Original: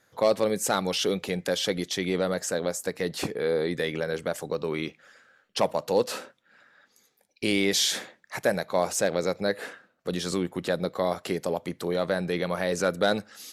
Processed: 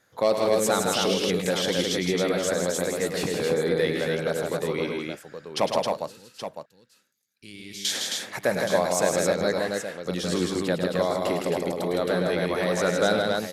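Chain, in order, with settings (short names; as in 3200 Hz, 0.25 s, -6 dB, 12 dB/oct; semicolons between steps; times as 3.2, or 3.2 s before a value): 5.83–7.85 passive tone stack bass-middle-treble 6-0-2; tapped delay 0.105/0.161/0.267/0.823 s -8/-4.5/-3.5/-10 dB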